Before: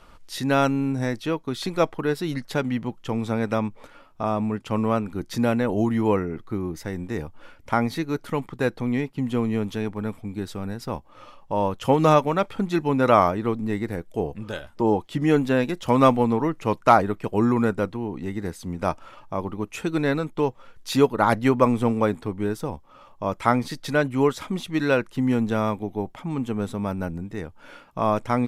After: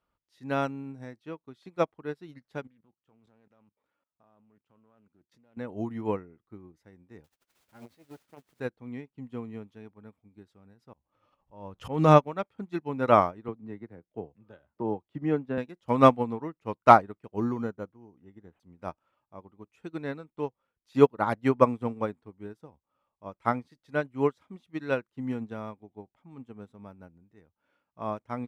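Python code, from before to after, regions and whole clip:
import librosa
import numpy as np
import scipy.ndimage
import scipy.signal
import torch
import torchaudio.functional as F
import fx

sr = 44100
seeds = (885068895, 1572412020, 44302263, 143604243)

y = fx.chain(x, sr, fx.highpass(hz=95.0, slope=6),
    fx.level_steps(step_db=18),
    fx.doppler_dist(depth_ms=0.17), at=(2.67, 5.57))
y = fx.chain(y, sr, fx.peak_eq(hz=1100.0, db=-12.0, octaves=0.3),
    fx.quant_dither(seeds[0], bits=6, dither='triangular'),
    fx.transformer_sat(knee_hz=850.0), at=(7.24, 8.6))
y = fx.chain(y, sr, fx.low_shelf(hz=150.0, db=7.5),
    fx.auto_swell(attack_ms=227.0),
    fx.pre_swell(db_per_s=36.0), at=(10.93, 12.24))
y = fx.chain(y, sr, fx.lowpass(hz=1700.0, slope=6),
    fx.band_squash(depth_pct=40), at=(13.48, 15.58))
y = fx.chain(y, sr, fx.resample_bad(factor=8, down='none', up='hold'),
    fx.moving_average(points=9), at=(17.36, 18.6))
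y = scipy.signal.sosfilt(scipy.signal.butter(2, 46.0, 'highpass', fs=sr, output='sos'), y)
y = fx.high_shelf(y, sr, hz=4600.0, db=-9.0)
y = fx.upward_expand(y, sr, threshold_db=-32.0, expansion=2.5)
y = y * 10.0 ** (2.5 / 20.0)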